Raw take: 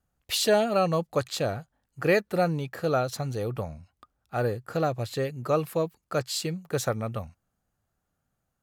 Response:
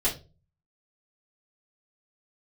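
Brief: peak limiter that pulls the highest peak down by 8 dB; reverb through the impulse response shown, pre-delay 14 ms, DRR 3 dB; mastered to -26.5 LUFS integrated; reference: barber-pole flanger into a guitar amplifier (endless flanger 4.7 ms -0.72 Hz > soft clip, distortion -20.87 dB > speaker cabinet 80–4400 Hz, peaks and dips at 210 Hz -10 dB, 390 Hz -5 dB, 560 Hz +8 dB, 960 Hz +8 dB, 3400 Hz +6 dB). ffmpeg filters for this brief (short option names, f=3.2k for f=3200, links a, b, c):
-filter_complex "[0:a]alimiter=limit=-18.5dB:level=0:latency=1,asplit=2[a][b];[1:a]atrim=start_sample=2205,adelay=14[c];[b][c]afir=irnorm=-1:irlink=0,volume=-12.5dB[d];[a][d]amix=inputs=2:normalize=0,asplit=2[e][f];[f]adelay=4.7,afreqshift=-0.72[g];[e][g]amix=inputs=2:normalize=1,asoftclip=threshold=-19.5dB,highpass=80,equalizer=f=210:t=q:w=4:g=-10,equalizer=f=390:t=q:w=4:g=-5,equalizer=f=560:t=q:w=4:g=8,equalizer=f=960:t=q:w=4:g=8,equalizer=f=3.4k:t=q:w=4:g=6,lowpass=f=4.4k:w=0.5412,lowpass=f=4.4k:w=1.3066,volume=4dB"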